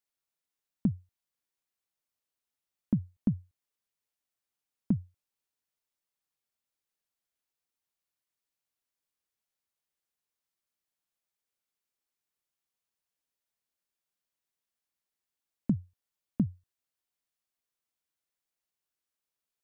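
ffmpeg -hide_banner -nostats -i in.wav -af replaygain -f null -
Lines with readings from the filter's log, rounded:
track_gain = +43.4 dB
track_peak = 0.110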